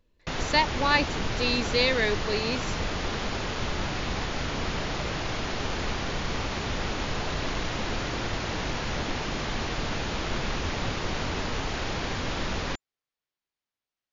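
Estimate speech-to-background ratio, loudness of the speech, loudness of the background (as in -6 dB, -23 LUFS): 5.0 dB, -26.0 LUFS, -31.0 LUFS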